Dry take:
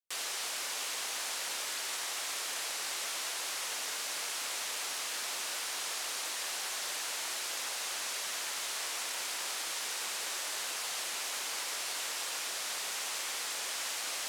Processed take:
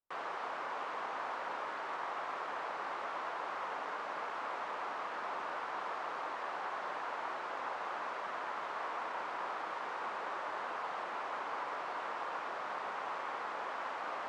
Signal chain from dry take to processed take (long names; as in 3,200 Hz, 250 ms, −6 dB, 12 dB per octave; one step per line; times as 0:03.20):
low-pass with resonance 1,100 Hz, resonance Q 1.7
low-shelf EQ 88 Hz +6.5 dB
level +3 dB